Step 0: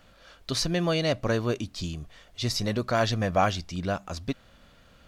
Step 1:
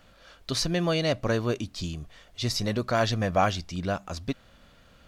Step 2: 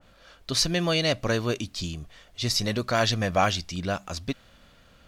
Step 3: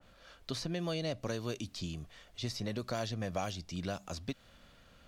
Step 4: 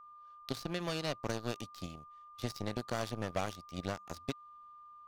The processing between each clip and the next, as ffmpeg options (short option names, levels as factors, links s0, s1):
-af anull
-af "adynamicequalizer=threshold=0.0112:dfrequency=1700:dqfactor=0.7:tfrequency=1700:tqfactor=0.7:attack=5:release=100:ratio=0.375:range=3:mode=boostabove:tftype=highshelf"
-filter_complex "[0:a]acrossover=split=85|890|3300[s0][s1][s2][s3];[s0]acompressor=threshold=0.00316:ratio=4[s4];[s1]acompressor=threshold=0.0316:ratio=4[s5];[s2]acompressor=threshold=0.00562:ratio=4[s6];[s3]acompressor=threshold=0.00794:ratio=4[s7];[s4][s5][s6][s7]amix=inputs=4:normalize=0,volume=0.596"
-af "aeval=exprs='0.0841*(cos(1*acos(clip(val(0)/0.0841,-1,1)))-cos(1*PI/2))+0.00668*(cos(3*acos(clip(val(0)/0.0841,-1,1)))-cos(3*PI/2))+0.00668*(cos(5*acos(clip(val(0)/0.0841,-1,1)))-cos(5*PI/2))+0.0133*(cos(7*acos(clip(val(0)/0.0841,-1,1)))-cos(7*PI/2))':c=same,aeval=exprs='val(0)+0.002*sin(2*PI*1200*n/s)':c=same,volume=1.26"